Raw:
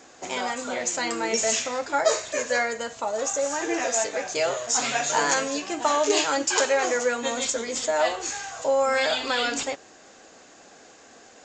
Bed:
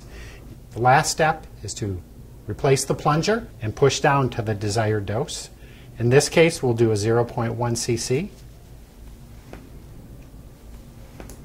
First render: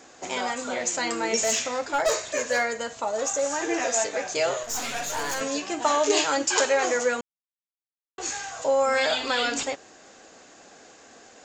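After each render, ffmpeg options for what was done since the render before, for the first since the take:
-filter_complex "[0:a]asettb=1/sr,asplit=3[s0][s1][s2];[s0]atrim=end=1.414[s3];[s1]atrim=start=1.41:end=3.41,asetpts=PTS-STARTPTS,afade=t=in:d=0.004:c=qsin,afade=t=out:st=1.996:d=0.004:c=qsin,asoftclip=type=hard:threshold=0.133[s4];[s2]atrim=start=3.406[s5];[s3][s4]acrossfade=d=0.004:c1=hsin:c2=qsin[s6];[s6][s5]acrossfade=d=0.004:c1=qsin:c2=hsin,asettb=1/sr,asplit=3[s7][s8][s9];[s7]atrim=end=4.634[s10];[s8]atrim=start=4.63:end=5.41,asetpts=PTS-STARTPTS,afade=t=in:d=0.004:c=qsin,afade=t=out:st=0.776:d=0.004:c=qsin,aeval=exprs='(tanh(20*val(0)+0.6)-tanh(0.6))/20':c=same[s11];[s9]atrim=start=5.406[s12];[s10][s11]acrossfade=d=0.004:c1=hsin:c2=qsin[s13];[s13][s12]acrossfade=d=0.004:c1=qsin:c2=hsin,asplit=3[s14][s15][s16];[s14]atrim=end=7.21,asetpts=PTS-STARTPTS,afade=t=out:st=7.206:d=0.004:c=hsin[s17];[s15]atrim=start=7.21:end=8.18,asetpts=PTS-STARTPTS,volume=0[s18];[s16]atrim=start=8.18,asetpts=PTS-STARTPTS,afade=t=in:d=0.004:c=hsin[s19];[s17][s18][s19]concat=n=3:v=0:a=1"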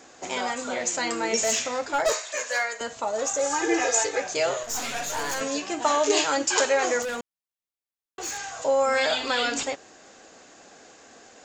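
-filter_complex "[0:a]asettb=1/sr,asplit=3[s0][s1][s2];[s0]atrim=end=2.124[s3];[s1]atrim=start=2.12:end=2.81,asetpts=PTS-STARTPTS,afade=t=in:d=0.004:c=qsin,afade=t=out:st=0.686:d=0.004:c=qsin,highpass=720[s4];[s2]atrim=start=2.806[s5];[s3][s4]acrossfade=d=0.004:c1=hsin:c2=qsin[s6];[s6][s5]acrossfade=d=0.004:c1=qsin:c2=hsin,asettb=1/sr,asplit=3[s7][s8][s9];[s7]atrim=end=3.404[s10];[s8]atrim=start=3.4:end=4.2,asetpts=PTS-STARTPTS,afade=t=in:d=0.004:c=qsin,afade=t=out:st=0.796:d=0.004:c=qsin,aecho=1:1:2.4:0.86,atrim=end_sample=35280[s11];[s9]atrim=start=4.196[s12];[s10][s11]acrossfade=d=0.004:c1=hsin:c2=qsin[s13];[s13][s12]acrossfade=d=0.004:c1=qsin:c2=hsin,asettb=1/sr,asplit=3[s14][s15][s16];[s14]atrim=end=7.024[s17];[s15]atrim=start=7.02:end=8.38,asetpts=PTS-STARTPTS,afade=t=in:d=0.004:c=qsin,afade=t=out:st=1.356:d=0.004:c=qsin,asoftclip=type=hard:threshold=0.0398[s18];[s16]atrim=start=8.376[s19];[s17][s18]acrossfade=d=0.004:c1=hsin:c2=qsin[s20];[s20][s19]acrossfade=d=0.004:c1=qsin:c2=hsin"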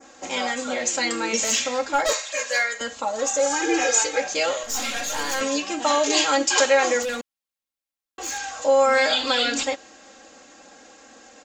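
-af "adynamicequalizer=threshold=0.0141:dfrequency=3500:dqfactor=0.97:tfrequency=3500:tqfactor=0.97:attack=5:release=100:ratio=0.375:range=2:mode=boostabove:tftype=bell,aecho=1:1:3.7:0.7"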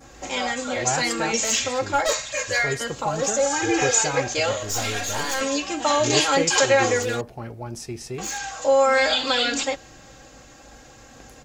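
-filter_complex "[1:a]volume=0.299[s0];[0:a][s0]amix=inputs=2:normalize=0"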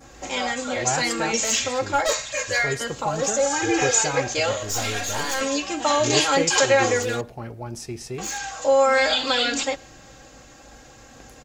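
-filter_complex "[0:a]asplit=2[s0][s1];[s1]adelay=110.8,volume=0.0398,highshelf=f=4000:g=-2.49[s2];[s0][s2]amix=inputs=2:normalize=0"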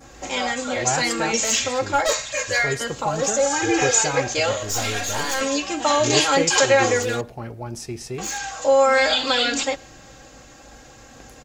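-af "volume=1.19"

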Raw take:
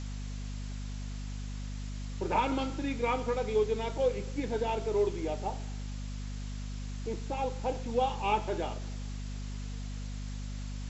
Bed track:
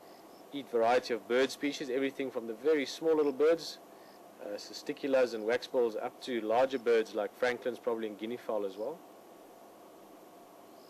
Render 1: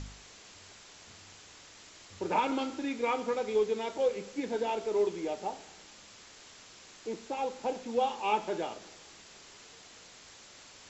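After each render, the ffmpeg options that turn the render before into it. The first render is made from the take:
-af "bandreject=f=50:t=h:w=4,bandreject=f=100:t=h:w=4,bandreject=f=150:t=h:w=4,bandreject=f=200:t=h:w=4,bandreject=f=250:t=h:w=4"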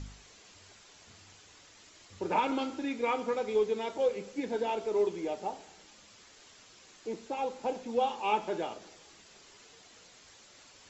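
-af "afftdn=nr=6:nf=-54"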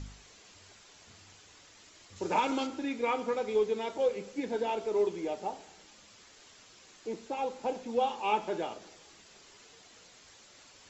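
-filter_complex "[0:a]asettb=1/sr,asplit=3[s0][s1][s2];[s0]atrim=end=2.164[s3];[s1]atrim=start=2.16:end=2.67,asetpts=PTS-STARTPTS,afade=t=in:d=0.004:c=qsin,afade=t=out:st=0.506:d=0.004:c=qsin,equalizer=f=6800:t=o:w=1.3:g=7.5[s4];[s2]atrim=start=2.666[s5];[s3][s4]acrossfade=d=0.004:c1=hsin:c2=qsin[s6];[s6][s5]acrossfade=d=0.004:c1=qsin:c2=hsin"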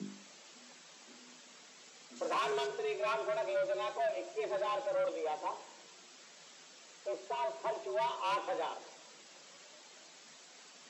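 -af "asoftclip=type=tanh:threshold=0.0335,afreqshift=150"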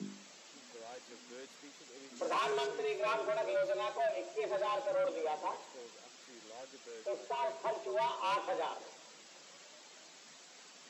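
-filter_complex "[1:a]volume=0.0708[s0];[0:a][s0]amix=inputs=2:normalize=0"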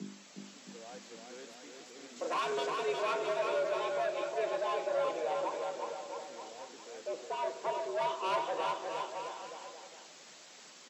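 -af "aecho=1:1:360|666|926.1|1147|1335:0.631|0.398|0.251|0.158|0.1"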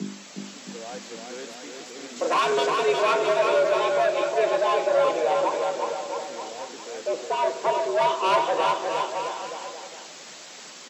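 -af "volume=3.76"

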